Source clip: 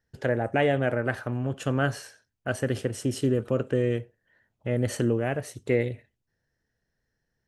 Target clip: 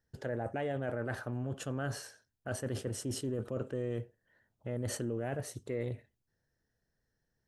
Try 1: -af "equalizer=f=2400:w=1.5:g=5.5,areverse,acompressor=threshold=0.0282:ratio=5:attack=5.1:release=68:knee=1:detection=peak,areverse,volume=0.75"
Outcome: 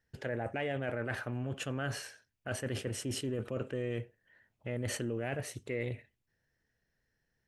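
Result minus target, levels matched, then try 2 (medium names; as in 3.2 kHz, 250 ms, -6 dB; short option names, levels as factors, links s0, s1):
2 kHz band +4.0 dB
-af "equalizer=f=2400:w=1.5:g=-5.5,areverse,acompressor=threshold=0.0282:ratio=5:attack=5.1:release=68:knee=1:detection=peak,areverse,volume=0.75"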